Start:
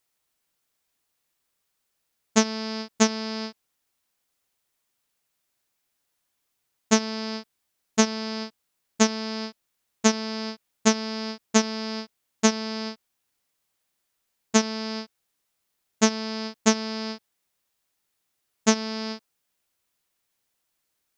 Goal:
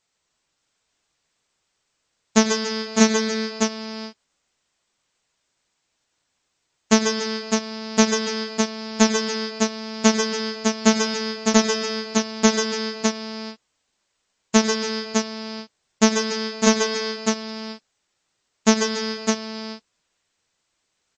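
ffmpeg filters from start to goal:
ffmpeg -i in.wav -af "aecho=1:1:96|137|139|284|605:0.112|0.299|0.316|0.158|0.501,acontrast=60,volume=-1dB" -ar 22050 -c:a libmp3lame -b:a 32k out.mp3

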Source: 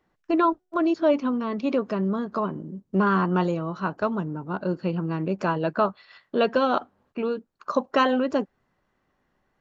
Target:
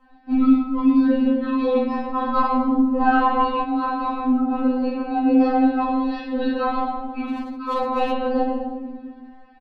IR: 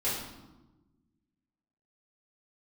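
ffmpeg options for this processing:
-filter_complex "[0:a]equalizer=frequency=770:width_type=o:width=0.56:gain=13,asplit=2[link_01][link_02];[link_02]asoftclip=type=tanh:threshold=-18dB,volume=-3.5dB[link_03];[link_01][link_03]amix=inputs=2:normalize=0,aresample=11025,aresample=44100,acrossover=split=110[link_04][link_05];[link_05]acompressor=threshold=-28dB:ratio=20[link_06];[link_04][link_06]amix=inputs=2:normalize=0,asplit=2[link_07][link_08];[link_08]adelay=38,volume=-9.5dB[link_09];[link_07][link_09]amix=inputs=2:normalize=0,afreqshift=-50[link_10];[1:a]atrim=start_sample=2205,asetrate=34839,aresample=44100[link_11];[link_10][link_11]afir=irnorm=-1:irlink=0,asettb=1/sr,asplit=3[link_12][link_13][link_14];[link_12]atrim=end=2.164[link_15];[link_13]atrim=start=2.16:end=3.64,asetpts=PTS-STARTPTS,afade=type=in:duration=0.004:curve=qsin,afade=type=out:start_time=1.476:duration=0.004:curve=qsin,acontrast=29[link_16];[link_14]atrim=start=3.636[link_17];[link_15][link_16]acrossfade=duration=0.004:curve1=hsin:curve2=qsin[link_18];[link_18][link_17]acrossfade=duration=0.004:curve1=qsin:curve2=hsin,asplit=3[link_19][link_20][link_21];[link_19]afade=type=out:start_time=7.28:duration=0.02[link_22];[link_20]asoftclip=type=hard:threshold=-17dB,afade=type=in:start_time=7.28:duration=0.02,afade=type=out:start_time=8.12:duration=0.02[link_23];[link_21]afade=type=in:start_time=8.12:duration=0.02[link_24];[link_22][link_23][link_24]amix=inputs=3:normalize=0,lowshelf=frequency=250:gain=4.5,afftfilt=real='re*3.46*eq(mod(b,12),0)':imag='im*3.46*eq(mod(b,12),0)':win_size=2048:overlap=0.75,volume=3dB"

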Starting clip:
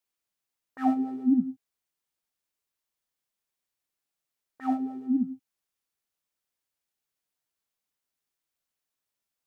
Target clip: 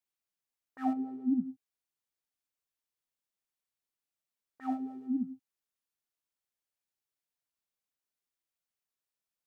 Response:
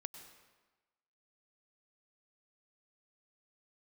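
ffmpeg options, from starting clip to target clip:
-filter_complex "[0:a]asettb=1/sr,asplit=3[link_01][link_02][link_03];[link_01]atrim=end=0.934[link_04];[link_02]atrim=start=0.93:end=1.46,asetpts=PTS-STARTPTS,afade=type=in:duration=0.004:curve=qsin,afade=type=out:start_time=0.526:duration=0.004:curve=qsin,highshelf=frequency=2100:gain=-11[link_05];[link_03]atrim=start=1.456[link_06];[link_04][link_05]acrossfade=duration=0.004:curve1=hsin:curve2=qsin[link_07];[link_07][link_06]acrossfade=duration=0.004:curve1=qsin:curve2=hsin,volume=-6.5dB"

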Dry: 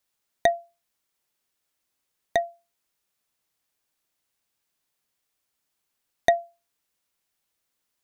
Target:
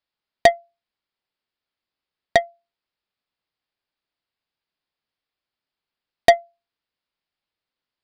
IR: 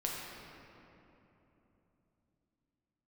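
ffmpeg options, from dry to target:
-af "volume=10dB,asoftclip=hard,volume=-10dB,aresample=11025,aresample=44100,aeval=exprs='0.376*(cos(1*acos(clip(val(0)/0.376,-1,1)))-cos(1*PI/2))+0.00266*(cos(4*acos(clip(val(0)/0.376,-1,1)))-cos(4*PI/2))+0.0119*(cos(5*acos(clip(val(0)/0.376,-1,1)))-cos(5*PI/2))+0.0473*(cos(7*acos(clip(val(0)/0.376,-1,1)))-cos(7*PI/2))':channel_layout=same,volume=7.5dB"

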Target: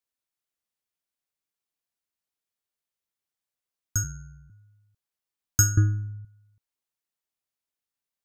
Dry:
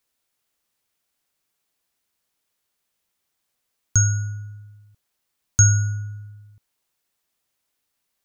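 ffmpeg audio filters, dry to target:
ffmpeg -i in.wav -filter_complex "[0:a]asettb=1/sr,asplit=3[link_01][link_02][link_03];[link_01]atrim=end=5.774[link_04];[link_02]atrim=start=5.77:end=6.25,asetpts=PTS-STARTPTS,afade=type=in:duration=0.004:curve=qsin,afade=type=out:start_time=0.476:duration=0.004:curve=qsin,bass=frequency=250:gain=11,treble=frequency=4000:gain=-11[link_05];[link_03]atrim=start=6.246[link_06];[link_04][link_05]acrossfade=duration=0.004:curve1=hsin:curve2=qsin[link_07];[link_07][link_06]acrossfade=duration=0.004:curve1=qsin:curve2=hsin,aeval=exprs='0.708*(cos(1*acos(clip(val(0)/0.708,-1,1)))-cos(1*PI/2))+0.0398*(cos(2*acos(clip(val(0)/0.708,-1,1)))-cos(2*PI/2))+0.2*(cos(3*acos(clip(val(0)/0.708,-1,1)))-cos(3*PI/2))+0.0224*(cos(4*acos(clip(val(0)/0.708,-1,1)))-cos(4*PI/2))+0.01*(cos(5*acos(clip(val(0)/0.708,-1,1)))-cos(5*PI/2))':channel_layout=same,asettb=1/sr,asplit=3[link_08][link_09][link_10];[link_08]atrim=end=4.034[link_11];[link_09]atrim=start=4.03:end=4.5,asetpts=PTS-STARTPTS,afade=type=in:duration=0.004:curve=qsin,afade=type=out:start_time=0.466:duration=0.004:curve=qsin,aeval=exprs='val(0)*sin(2*PI*42*n/s)':channel_layout=same[link_12];[link_10]atrim=start=4.496[link_13];[link_11][link_12]acrossfade=duration=0.004:curve1=hsin:curve2=qsin[link_14];[link_14][link_13]acrossfade=duration=0.004:curve1=qsin:curve2=hsin,volume=-1dB" out.wav

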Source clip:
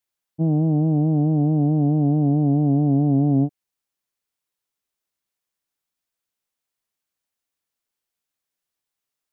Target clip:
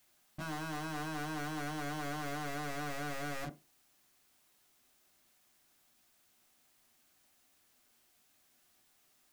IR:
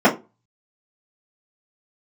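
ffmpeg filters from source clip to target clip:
-filter_complex "[0:a]aeval=exprs='0.282*sin(PI/2*5.62*val(0)/0.282)':channel_layout=same,aeval=exprs='(tanh(89.1*val(0)+0.55)-tanh(0.55))/89.1':channel_layout=same,asplit=2[link_01][link_02];[1:a]atrim=start_sample=2205[link_03];[link_02][link_03]afir=irnorm=-1:irlink=0,volume=-29dB[link_04];[link_01][link_04]amix=inputs=2:normalize=0,volume=-2dB"

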